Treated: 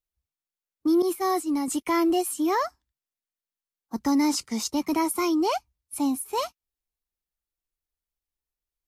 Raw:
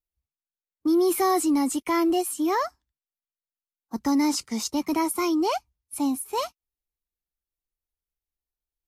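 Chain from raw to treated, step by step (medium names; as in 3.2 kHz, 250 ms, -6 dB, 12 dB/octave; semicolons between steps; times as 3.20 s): 1.02–1.68 s: expander -17 dBFS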